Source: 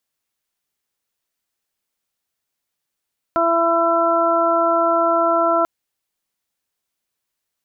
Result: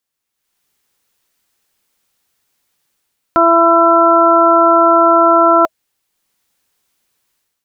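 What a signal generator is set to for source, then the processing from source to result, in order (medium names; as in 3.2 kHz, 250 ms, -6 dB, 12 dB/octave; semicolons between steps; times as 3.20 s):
steady additive tone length 2.29 s, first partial 335 Hz, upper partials 6/0.5/4.5 dB, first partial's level -23 dB
band-stop 640 Hz, Q 12; level rider gain up to 13 dB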